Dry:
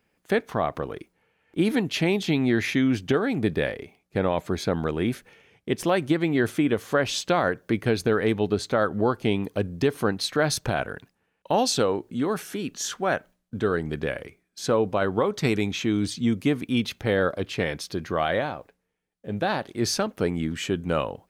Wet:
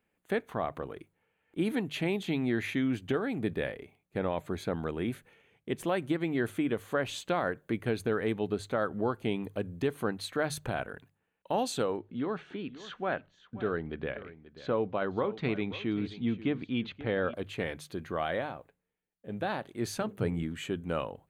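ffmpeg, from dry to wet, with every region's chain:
-filter_complex "[0:a]asettb=1/sr,asplit=3[s0][s1][s2];[s0]atrim=end=11.974[s3];[s1]atrim=start=11.97:end=17.34,asetpts=PTS-STARTPTS,afade=t=in:d=0.004:c=qsin,afade=t=out:st=5.366:d=0.004:c=qsin,lowpass=f=4200:w=0.5412,lowpass=f=4200:w=1.3066,aecho=1:1:533:0.168,atrim=end_sample=236817[s4];[s2]atrim=start=17.336[s5];[s3][s4]acrossfade=d=0.004:c1=hsin:c2=qsin[s6];[s6][s5]acrossfade=d=0.004:c1=qsin:c2=hsin,asettb=1/sr,asplit=3[s7][s8][s9];[s7]atrim=end=19.944[s10];[s8]atrim=start=19.94:end=20.43,asetpts=PTS-STARTPTS,afade=t=in:d=0.004:c=qsin,afade=t=out:st=0.486:d=0.004:c=qsin,equalizer=f=120:w=2:g=14.5,bandreject=f=50:t=h:w=6,bandreject=f=100:t=h:w=6,bandreject=f=150:t=h:w=6,bandreject=f=200:t=h:w=6,bandreject=f=250:t=h:w=6,bandreject=f=300:t=h:w=6,bandreject=f=350:t=h:w=6,bandreject=f=400:t=h:w=6,bandreject=f=450:t=h:w=6,bandreject=f=500:t=h:w=6[s11];[s9]atrim=start=20.426[s12];[s10][s11]acrossfade=d=0.004:c1=hsin:c2=qsin[s13];[s13][s12]acrossfade=d=0.004:c1=qsin:c2=hsin,equalizer=f=5300:w=3:g=-13,bandreject=f=50:t=h:w=6,bandreject=f=100:t=h:w=6,bandreject=f=150:t=h:w=6,volume=0.422"

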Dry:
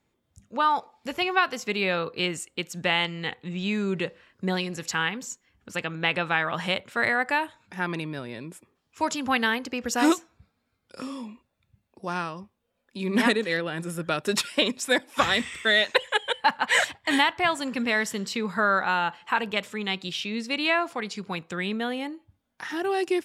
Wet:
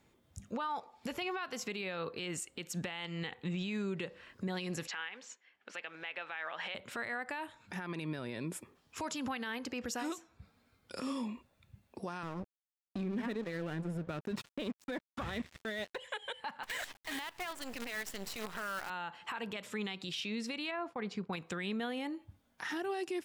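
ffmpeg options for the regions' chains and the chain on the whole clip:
-filter_complex "[0:a]asettb=1/sr,asplit=3[s0][s1][s2];[s0]atrim=end=4.874[s3];[s1]atrim=start=4.87:end=6.75,asetpts=PTS-STARTPTS,afade=t=in:d=0.004:c=qsin,afade=t=out:st=1.876:d=0.004:c=qsin,equalizer=f=1100:t=o:w=0.97:g=-7.5,acrusher=bits=7:mode=log:mix=0:aa=0.000001,highpass=790,lowpass=2700[s4];[s2]atrim=start=6.746[s5];[s3][s4]acrossfade=d=0.004:c1=hsin:c2=qsin[s6];[s6][s5]acrossfade=d=0.004:c1=qsin:c2=hsin,asettb=1/sr,asplit=3[s7][s8][s9];[s7]atrim=end=12.234[s10];[s8]atrim=start=12.23:end=15.98,asetpts=PTS-STARTPTS,afade=t=in:d=0.004:c=qsin,afade=t=out:st=3.746:d=0.004:c=qsin,aemphasis=mode=reproduction:type=riaa,aeval=exprs='sgn(val(0))*max(abs(val(0))-0.0168,0)':c=same[s11];[s9]atrim=start=15.976[s12];[s10][s11]acrossfade=d=0.004:c1=hsin:c2=qsin[s13];[s13][s12]acrossfade=d=0.004:c1=qsin:c2=hsin,asettb=1/sr,asplit=3[s14][s15][s16];[s14]atrim=end=16.634[s17];[s15]atrim=start=16.63:end=18.9,asetpts=PTS-STARTPTS,afade=t=in:d=0.004:c=qsin,afade=t=out:st=2.266:d=0.004:c=qsin,aeval=exprs='if(lt(val(0),0),0.447*val(0),val(0))':c=same,highpass=f=370:p=1,acrusher=bits=6:dc=4:mix=0:aa=0.000001[s18];[s16]atrim=start=18.896[s19];[s17][s18]acrossfade=d=0.004:c1=hsin:c2=qsin[s20];[s20][s19]acrossfade=d=0.004:c1=qsin:c2=hsin,asettb=1/sr,asplit=3[s21][s22][s23];[s21]atrim=end=20.714[s24];[s22]atrim=start=20.71:end=21.33,asetpts=PTS-STARTPTS,afade=t=in:d=0.004:c=qsin,afade=t=out:st=0.616:d=0.004:c=qsin,agate=range=0.0224:threshold=0.0126:ratio=3:release=100:detection=peak,lowpass=f=1100:p=1[s25];[s23]atrim=start=21.326[s26];[s24][s25]acrossfade=d=0.004:c1=hsin:c2=qsin[s27];[s27][s26]acrossfade=d=0.004:c1=qsin:c2=hsin,acompressor=threshold=0.00891:ratio=2.5,alimiter=level_in=3.35:limit=0.0631:level=0:latency=1:release=81,volume=0.299,volume=1.78"

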